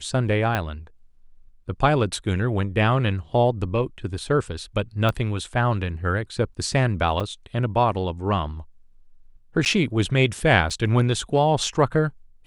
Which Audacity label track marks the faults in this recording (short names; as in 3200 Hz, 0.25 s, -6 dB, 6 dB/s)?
0.550000	0.550000	pop -10 dBFS
5.090000	5.090000	pop -11 dBFS
7.200000	7.210000	gap 5.1 ms
9.650000	9.660000	gap 9.5 ms
10.700000	10.700000	gap 3.5 ms